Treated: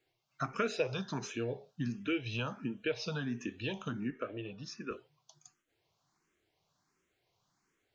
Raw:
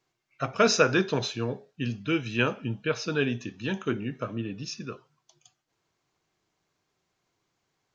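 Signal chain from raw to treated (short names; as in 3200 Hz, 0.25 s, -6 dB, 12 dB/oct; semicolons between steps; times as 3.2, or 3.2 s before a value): 4.1–4.91 tone controls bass -11 dB, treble -14 dB; compressor 3:1, threshold -32 dBFS, peak gain reduction 12.5 dB; endless phaser +1.4 Hz; gain +1.5 dB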